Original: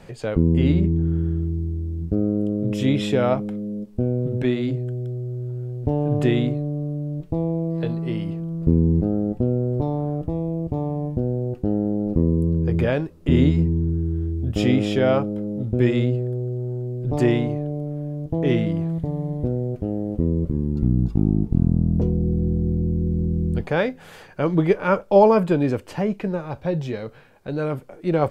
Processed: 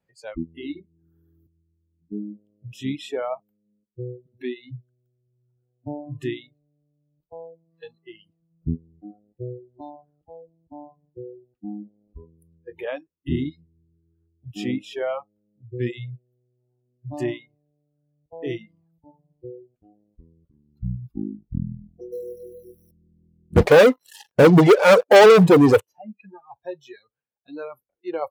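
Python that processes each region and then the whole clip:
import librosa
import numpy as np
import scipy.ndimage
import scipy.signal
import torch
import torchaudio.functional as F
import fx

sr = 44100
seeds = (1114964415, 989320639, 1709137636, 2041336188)

y = fx.chain(x, sr, fx.highpass(hz=63.0, slope=6),
    fx.band_squash(depth_pct=100), at=(0.79, 1.47))
y = fx.chain(y, sr, fx.peak_eq(hz=480.0, db=15.0, octaves=0.27),
    fx.quant_float(bits=4), at=(22.12, 22.91))
y = fx.chain(y, sr, fx.peak_eq(hz=480.0, db=9.5, octaves=0.44),
    fx.leveller(passes=5), at=(23.56, 25.81))
y = fx.dereverb_blind(y, sr, rt60_s=1.7)
y = scipy.signal.sosfilt(scipy.signal.butter(2, 42.0, 'highpass', fs=sr, output='sos'), y)
y = fx.noise_reduce_blind(y, sr, reduce_db=27)
y = y * 10.0 ** (-5.5 / 20.0)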